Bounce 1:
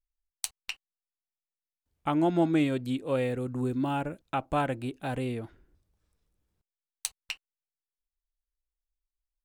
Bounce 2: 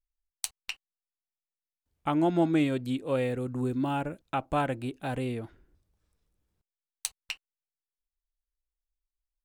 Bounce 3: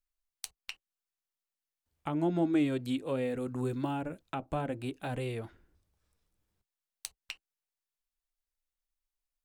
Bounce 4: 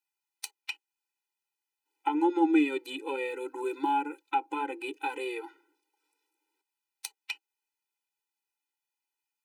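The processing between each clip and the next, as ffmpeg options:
-af anull
-filter_complex "[0:a]acrossover=split=570[s0][s1];[s0]flanger=delay=9.2:depth=3.4:regen=-40:speed=0.78:shape=triangular[s2];[s1]acompressor=threshold=0.0112:ratio=6[s3];[s2][s3]amix=inputs=2:normalize=0,volume=1.12"
-af "equalizer=f=500:t=o:w=0.33:g=-7,equalizer=f=800:t=o:w=0.33:g=11,equalizer=f=2500:t=o:w=0.33:g=9,afftfilt=real='re*eq(mod(floor(b*sr/1024/260),2),1)':imag='im*eq(mod(floor(b*sr/1024/260),2),1)':win_size=1024:overlap=0.75,volume=1.78"

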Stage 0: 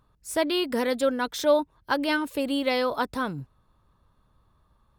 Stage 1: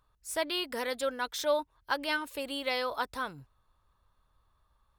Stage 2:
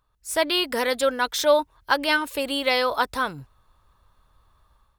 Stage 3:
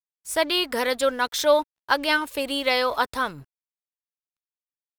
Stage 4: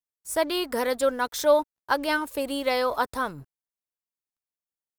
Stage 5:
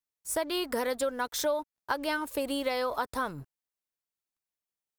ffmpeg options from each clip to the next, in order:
-af "equalizer=f=200:w=0.53:g=-12.5,volume=0.708"
-af "dynaudnorm=f=110:g=5:m=3.16"
-af "aeval=exprs='sgn(val(0))*max(abs(val(0))-0.00376,0)':c=same"
-af "equalizer=f=3000:w=0.68:g=-8.5"
-af "acompressor=threshold=0.0447:ratio=5"

